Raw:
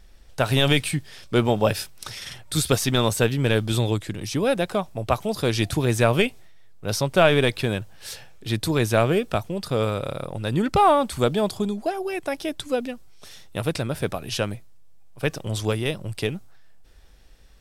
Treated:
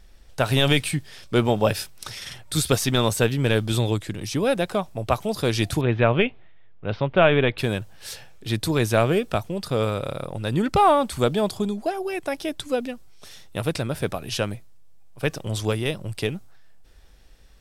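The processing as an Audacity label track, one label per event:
5.810000	7.580000	steep low-pass 3300 Hz

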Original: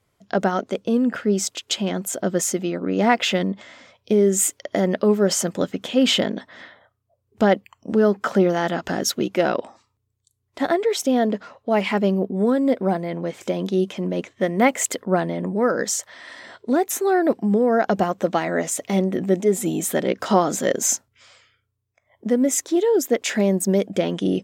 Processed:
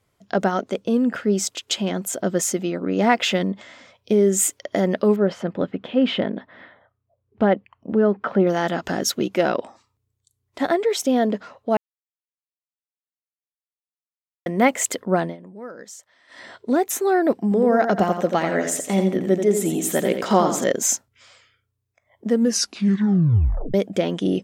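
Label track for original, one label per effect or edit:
5.160000	8.470000	air absorption 380 m
11.770000	14.460000	mute
15.240000	16.410000	dip -16.5 dB, fades 0.13 s
17.430000	20.640000	feedback echo 86 ms, feedback 31%, level -7 dB
22.280000	22.280000	tape stop 1.46 s

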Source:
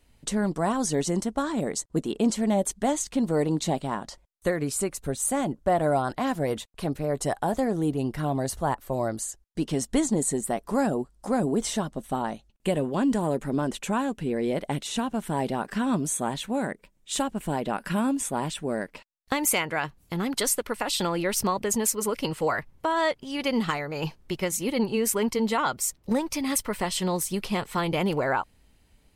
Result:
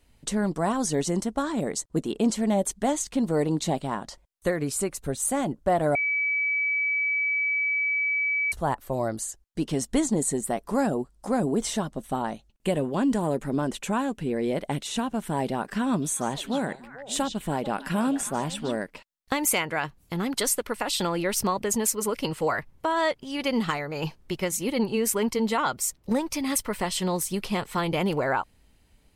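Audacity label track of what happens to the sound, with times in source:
5.950000	8.520000	bleep 2290 Hz -22.5 dBFS
15.870000	18.770000	delay with a stepping band-pass 0.148 s, band-pass from 4000 Hz, each repeat -1.4 oct, level -5 dB

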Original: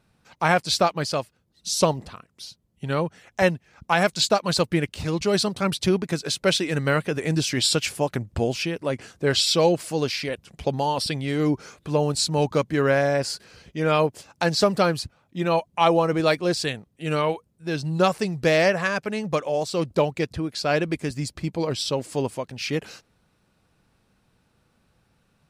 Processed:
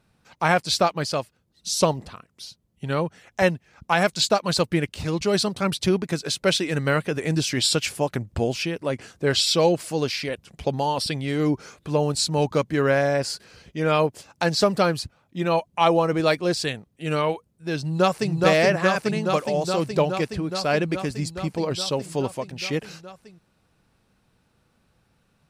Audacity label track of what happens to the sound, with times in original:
17.790000	18.340000	echo throw 0.42 s, feedback 80%, level -1.5 dB

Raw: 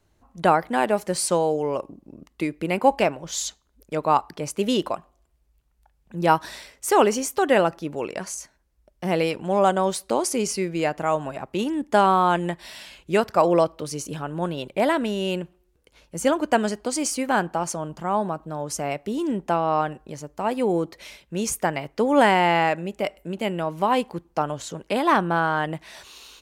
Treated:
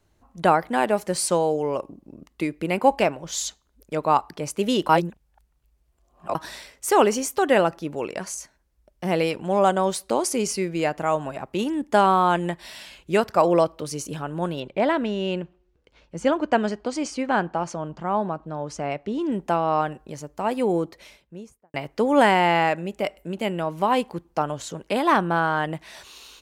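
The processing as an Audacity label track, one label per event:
4.890000	6.350000	reverse
14.600000	19.320000	air absorption 120 m
20.700000	21.740000	studio fade out

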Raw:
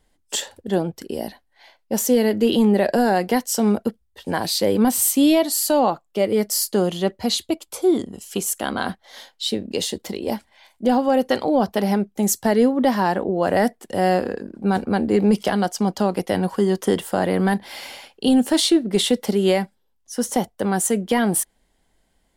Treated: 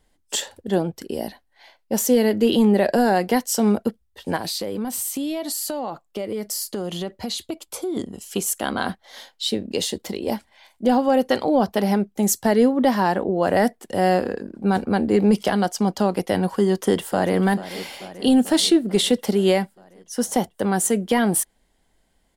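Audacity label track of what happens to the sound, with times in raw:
4.360000	7.970000	compressor 10:1, threshold -23 dBFS
16.680000	17.380000	echo throw 0.44 s, feedback 70%, level -15 dB

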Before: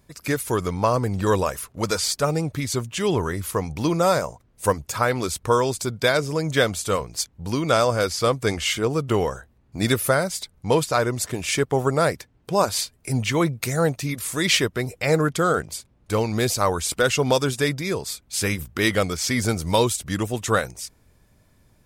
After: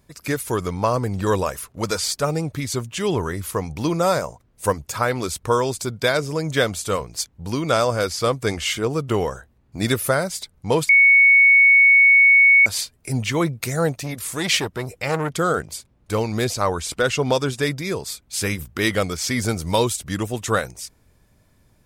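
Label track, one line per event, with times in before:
10.890000	12.660000	bleep 2220 Hz -9 dBFS
14.030000	15.350000	core saturation saturates under 1200 Hz
16.440000	17.630000	high shelf 9300 Hz -9.5 dB

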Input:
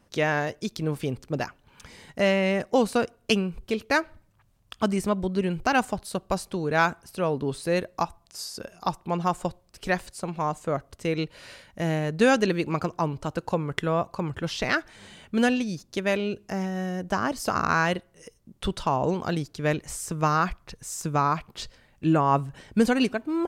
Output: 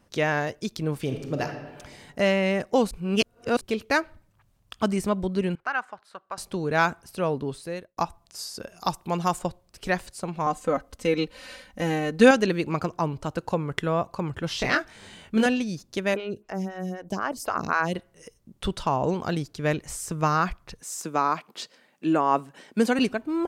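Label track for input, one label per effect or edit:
1.000000	1.440000	reverb throw, RT60 1.4 s, DRR 4.5 dB
2.910000	3.610000	reverse
5.550000	6.380000	band-pass 1400 Hz, Q 2.1
7.310000	7.970000	fade out
8.760000	9.390000	high shelf 4100 Hz +10 dB
10.460000	12.310000	comb 3.9 ms, depth 89%
14.480000	15.460000	doubler 23 ms -4 dB
16.140000	17.950000	photocell phaser 3.9 Hz
20.810000	22.990000	HPF 210 Hz 24 dB/oct

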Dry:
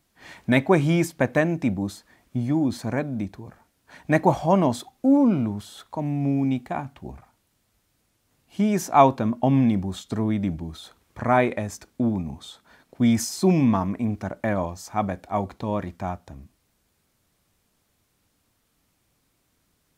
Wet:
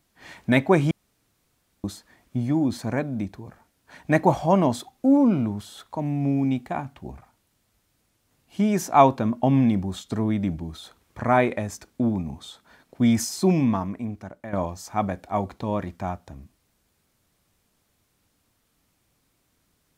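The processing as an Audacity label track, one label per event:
0.910000	1.840000	room tone
13.350000	14.530000	fade out, to -13.5 dB

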